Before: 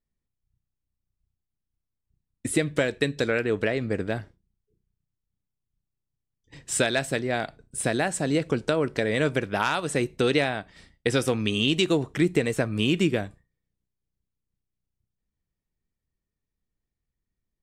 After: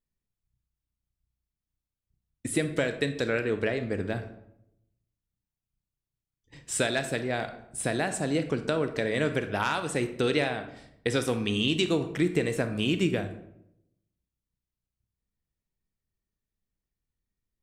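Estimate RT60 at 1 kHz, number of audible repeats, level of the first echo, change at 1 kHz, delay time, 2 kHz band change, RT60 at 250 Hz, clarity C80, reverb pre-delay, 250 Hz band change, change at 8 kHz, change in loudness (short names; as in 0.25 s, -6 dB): 0.70 s, none, none, -3.0 dB, none, -3.0 dB, 0.95 s, 14.0 dB, 28 ms, -3.0 dB, -3.0 dB, -3.0 dB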